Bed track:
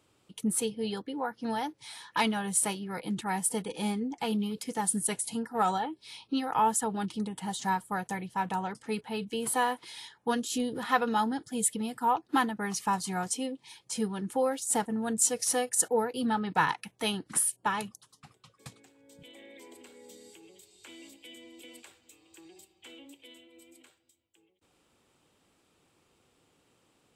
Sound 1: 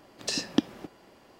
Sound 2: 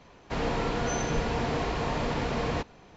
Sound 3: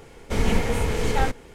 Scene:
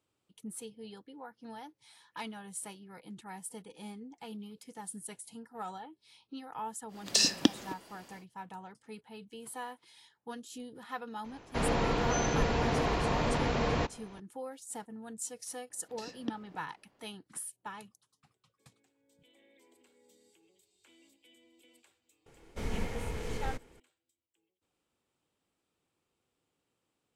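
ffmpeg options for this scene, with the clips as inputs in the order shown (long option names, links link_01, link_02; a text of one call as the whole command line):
ffmpeg -i bed.wav -i cue0.wav -i cue1.wav -i cue2.wav -filter_complex "[1:a]asplit=2[link_01][link_02];[0:a]volume=-14dB[link_03];[link_01]highshelf=frequency=2700:gain=9.5[link_04];[link_02]lowpass=frequency=3500:poles=1[link_05];[link_04]atrim=end=1.39,asetpts=PTS-STARTPTS,volume=-1.5dB,afade=type=in:duration=0.1,afade=type=out:start_time=1.29:duration=0.1,adelay=6870[link_06];[2:a]atrim=end=2.96,asetpts=PTS-STARTPTS,volume=-0.5dB,afade=type=in:duration=0.004:curve=hsin,afade=type=out:start_time=2.956:duration=0.004:curve=hsin,adelay=11240[link_07];[link_05]atrim=end=1.39,asetpts=PTS-STARTPTS,volume=-13.5dB,afade=type=in:duration=0.004:curve=hsin,afade=type=out:start_time=1.386:duration=0.004:curve=hsin,adelay=15700[link_08];[3:a]atrim=end=1.54,asetpts=PTS-STARTPTS,volume=-13.5dB,afade=type=in:duration=0.004:curve=hsin,afade=type=out:start_time=1.536:duration=0.004:curve=hsin,adelay=22260[link_09];[link_03][link_06][link_07][link_08][link_09]amix=inputs=5:normalize=0" out.wav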